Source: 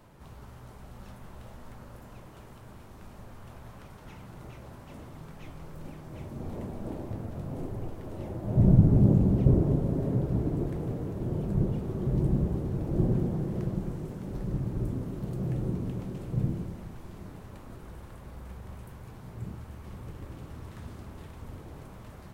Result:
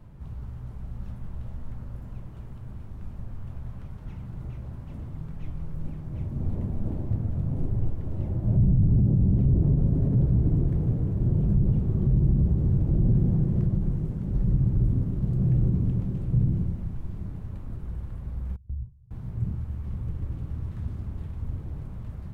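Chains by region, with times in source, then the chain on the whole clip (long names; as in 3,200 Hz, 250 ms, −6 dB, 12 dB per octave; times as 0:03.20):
0:18.56–0:19.11: expanding power law on the bin magnitudes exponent 2.1 + noise gate with hold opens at −35 dBFS, closes at −44 dBFS + highs frequency-modulated by the lows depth 0.53 ms
whole clip: low-shelf EQ 190 Hz +10.5 dB; brickwall limiter −16 dBFS; bass and treble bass +8 dB, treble −5 dB; level −5 dB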